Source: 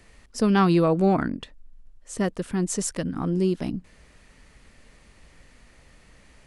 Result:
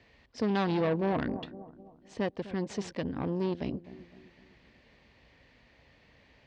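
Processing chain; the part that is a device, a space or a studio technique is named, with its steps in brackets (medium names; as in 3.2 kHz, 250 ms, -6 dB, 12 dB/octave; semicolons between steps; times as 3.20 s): analogue delay pedal into a guitar amplifier (bucket-brigade echo 253 ms, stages 2048, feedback 46%, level -16 dB; valve stage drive 22 dB, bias 0.65; cabinet simulation 80–4500 Hz, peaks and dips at 180 Hz -6 dB, 350 Hz -3 dB, 1.3 kHz -8 dB)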